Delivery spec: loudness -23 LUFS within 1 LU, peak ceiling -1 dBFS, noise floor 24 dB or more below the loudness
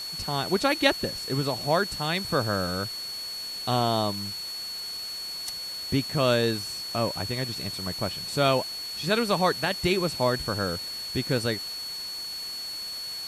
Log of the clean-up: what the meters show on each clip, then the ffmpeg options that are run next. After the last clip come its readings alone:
steady tone 4.4 kHz; tone level -33 dBFS; noise floor -36 dBFS; noise floor target -52 dBFS; loudness -27.5 LUFS; peak level -6.0 dBFS; loudness target -23.0 LUFS
-> -af "bandreject=f=4400:w=30"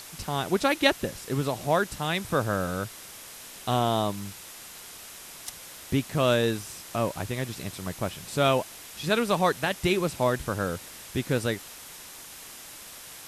steady tone not found; noise floor -45 dBFS; noise floor target -52 dBFS
-> -af "afftdn=nr=7:nf=-45"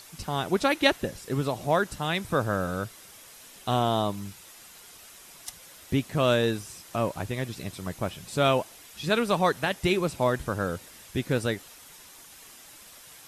noise floor -50 dBFS; noise floor target -52 dBFS
-> -af "afftdn=nr=6:nf=-50"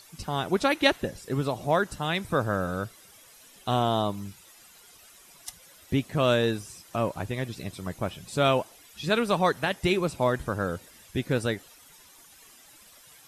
noise floor -54 dBFS; loudness -27.5 LUFS; peak level -6.0 dBFS; loudness target -23.0 LUFS
-> -af "volume=1.68"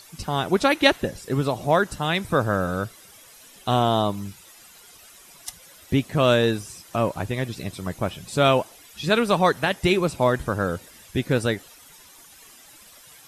loudness -23.0 LUFS; peak level -1.5 dBFS; noise floor -49 dBFS

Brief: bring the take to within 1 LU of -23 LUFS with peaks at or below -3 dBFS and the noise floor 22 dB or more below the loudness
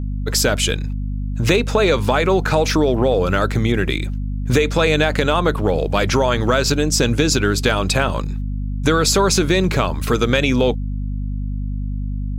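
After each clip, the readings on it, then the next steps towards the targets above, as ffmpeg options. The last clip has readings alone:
hum 50 Hz; highest harmonic 250 Hz; hum level -21 dBFS; loudness -18.5 LUFS; peak level -2.0 dBFS; loudness target -23.0 LUFS
-> -af "bandreject=f=50:t=h:w=6,bandreject=f=100:t=h:w=6,bandreject=f=150:t=h:w=6,bandreject=f=200:t=h:w=6,bandreject=f=250:t=h:w=6"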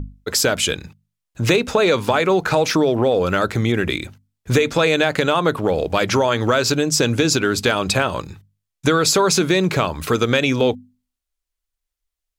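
hum not found; loudness -18.0 LUFS; peak level -2.0 dBFS; loudness target -23.0 LUFS
-> -af "volume=0.562"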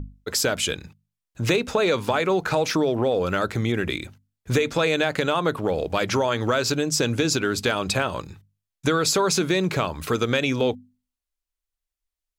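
loudness -23.0 LUFS; peak level -7.0 dBFS; noise floor -87 dBFS

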